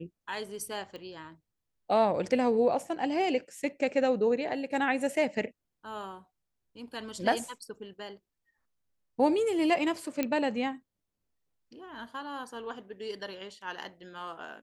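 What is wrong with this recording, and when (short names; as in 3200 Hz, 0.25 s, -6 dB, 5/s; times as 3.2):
0.96 pop -30 dBFS
10.23 pop -15 dBFS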